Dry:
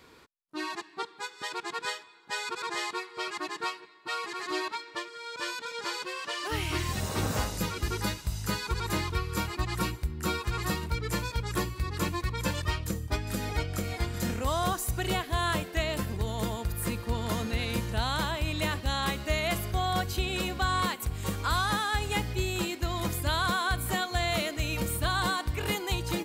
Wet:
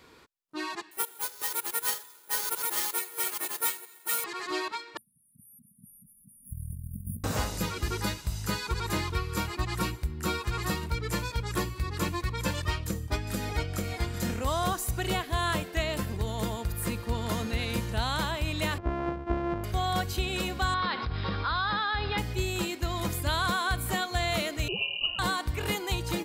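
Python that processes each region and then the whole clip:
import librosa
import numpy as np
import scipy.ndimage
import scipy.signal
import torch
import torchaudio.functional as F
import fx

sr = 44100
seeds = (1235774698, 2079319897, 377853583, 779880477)

y = fx.chain(x, sr, fx.lower_of_two(delay_ms=2.2),
    fx.highpass(hz=370.0, slope=6),
    fx.resample_bad(factor=4, down='none', up='zero_stuff'), at=(0.91, 4.24))
y = fx.chain(y, sr, fx.brickwall_bandstop(low_hz=250.0, high_hz=9100.0),
    fx.over_compress(threshold_db=-37.0, ratio=-0.5), at=(4.97, 7.24))
y = fx.chain(y, sr, fx.sample_sort(block=128),
    fx.lowpass(hz=1200.0, slope=12), at=(18.78, 19.64))
y = fx.chain(y, sr, fx.cheby_ripple(hz=5200.0, ripple_db=6),
    fx.env_flatten(amount_pct=70), at=(20.74, 22.18))
y = fx.chain(y, sr, fx.ellip_bandstop(low_hz=440.0, high_hz=2100.0, order=3, stop_db=40),
    fx.comb(ms=4.4, depth=0.37),
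    fx.freq_invert(carrier_hz=2900), at=(24.68, 25.19))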